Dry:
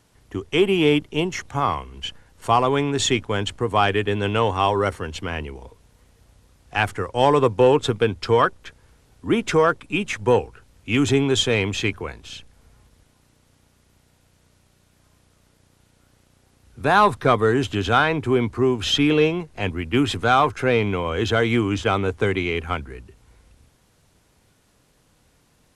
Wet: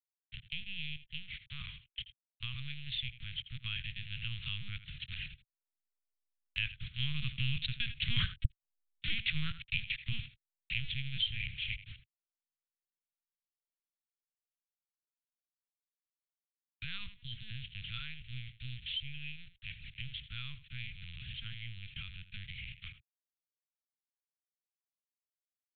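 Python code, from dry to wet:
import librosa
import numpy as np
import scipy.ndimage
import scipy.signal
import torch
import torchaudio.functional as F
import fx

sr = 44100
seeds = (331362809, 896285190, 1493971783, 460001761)

y = fx.delta_hold(x, sr, step_db=-22.5)
y = fx.doppler_pass(y, sr, speed_mps=9, closest_m=2.7, pass_at_s=8.58)
y = fx.highpass(y, sr, hz=75.0, slope=6)
y = fx.peak_eq(y, sr, hz=120.0, db=-14.5, octaves=1.4)
y = y + 10.0 ** (-15.5 / 20.0) * np.pad(y, (int(82 * sr / 1000.0), 0))[:len(y)]
y = fx.spec_repair(y, sr, seeds[0], start_s=17.21, length_s=0.3, low_hz=590.0, high_hz=3000.0, source='both')
y = fx.lpc_vocoder(y, sr, seeds[1], excitation='pitch_kept', order=8)
y = scipy.signal.sosfilt(scipy.signal.cheby1(3, 1.0, [130.0, 2600.0], 'bandstop', fs=sr, output='sos'), y)
y = fx.low_shelf(y, sr, hz=210.0, db=-10.0)
y = fx.band_squash(y, sr, depth_pct=70)
y = y * 10.0 ** (14.0 / 20.0)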